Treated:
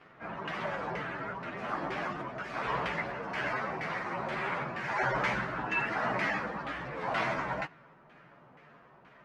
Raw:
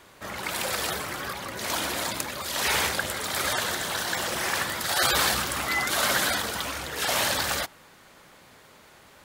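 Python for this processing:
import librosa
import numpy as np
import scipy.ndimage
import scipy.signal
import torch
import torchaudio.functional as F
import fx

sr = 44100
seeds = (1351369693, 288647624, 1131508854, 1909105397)

y = fx.partial_stretch(x, sr, pct=113)
y = fx.filter_lfo_lowpass(y, sr, shape='saw_down', hz=2.1, low_hz=1000.0, high_hz=2100.0, q=1.3)
y = fx.low_shelf_res(y, sr, hz=110.0, db=-6.5, q=3.0)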